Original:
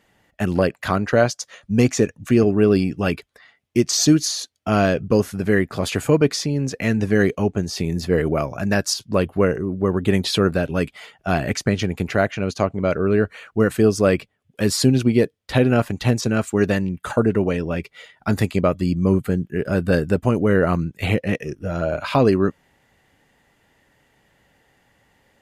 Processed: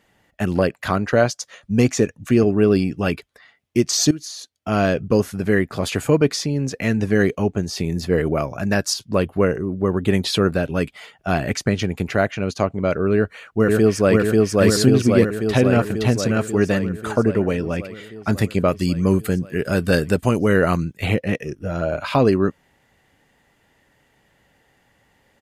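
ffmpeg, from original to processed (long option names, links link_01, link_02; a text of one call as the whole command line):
ffmpeg -i in.wav -filter_complex "[0:a]asplit=2[link_01][link_02];[link_02]afade=type=in:start_time=13.14:duration=0.01,afade=type=out:start_time=14.16:duration=0.01,aecho=0:1:540|1080|1620|2160|2700|3240|3780|4320|4860|5400|5940|6480:0.944061|0.660843|0.46259|0.323813|0.226669|0.158668|0.111068|0.0777475|0.0544232|0.0380963|0.0266674|0.0186672[link_03];[link_01][link_03]amix=inputs=2:normalize=0,asettb=1/sr,asplit=3[link_04][link_05][link_06];[link_04]atrim=end=18.684[link_07];[link_05]atrim=start=18.68:end=20.93,asetpts=PTS-STARTPTS,afade=type=in:duration=0.004:curve=qsin,afade=type=out:start_time=2.246:duration=0.004:curve=qsin,highshelf=frequency=2400:gain=10[link_08];[link_06]atrim=start=20.926[link_09];[link_07][link_08]acrossfade=duration=0.004:curve1=hsin:curve2=qsin[link_10];[link_10][link_09]acrossfade=duration=0.004:curve1=qsin:curve2=hsin,asplit=2[link_11][link_12];[link_11]atrim=end=4.11,asetpts=PTS-STARTPTS,afade=type=out:start_time=4.106:duration=0.004:curve=hsin:silence=0.133352[link_13];[link_12]atrim=start=4.11,asetpts=PTS-STARTPTS,afade=type=in:duration=0.8:silence=0.133352[link_14];[link_13][link_14]concat=n=2:v=0:a=1" out.wav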